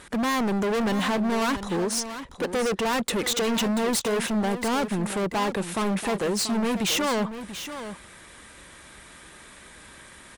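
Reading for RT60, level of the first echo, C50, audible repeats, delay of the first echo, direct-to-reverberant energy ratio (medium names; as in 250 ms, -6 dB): no reverb, -11.0 dB, no reverb, 1, 685 ms, no reverb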